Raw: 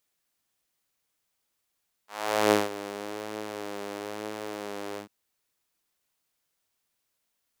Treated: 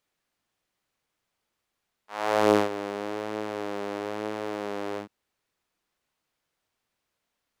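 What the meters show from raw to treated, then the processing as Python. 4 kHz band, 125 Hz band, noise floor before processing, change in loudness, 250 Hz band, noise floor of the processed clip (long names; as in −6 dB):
−2.0 dB, +3.5 dB, −79 dBFS, +2.5 dB, +3.5 dB, −82 dBFS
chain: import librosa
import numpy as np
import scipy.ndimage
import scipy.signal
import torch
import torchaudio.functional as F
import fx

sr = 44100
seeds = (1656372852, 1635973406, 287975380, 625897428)

y = fx.lowpass(x, sr, hz=2500.0, slope=6)
y = 10.0 ** (-12.0 / 20.0) * np.tanh(y / 10.0 ** (-12.0 / 20.0))
y = y * 10.0 ** (4.5 / 20.0)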